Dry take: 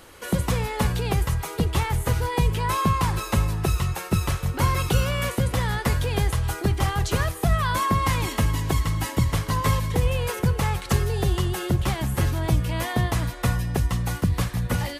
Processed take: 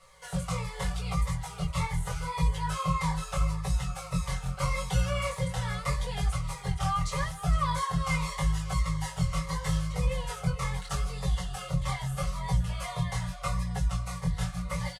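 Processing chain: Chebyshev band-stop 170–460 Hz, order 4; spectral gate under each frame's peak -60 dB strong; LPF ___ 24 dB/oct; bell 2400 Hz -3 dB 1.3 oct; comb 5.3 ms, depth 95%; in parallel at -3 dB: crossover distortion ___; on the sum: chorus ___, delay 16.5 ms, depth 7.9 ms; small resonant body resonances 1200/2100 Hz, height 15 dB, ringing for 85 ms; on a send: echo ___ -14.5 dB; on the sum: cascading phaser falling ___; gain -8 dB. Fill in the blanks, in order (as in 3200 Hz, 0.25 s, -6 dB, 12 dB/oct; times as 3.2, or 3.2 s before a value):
10000 Hz, -47.5 dBFS, 0.8 Hz, 0.459 s, 1.7 Hz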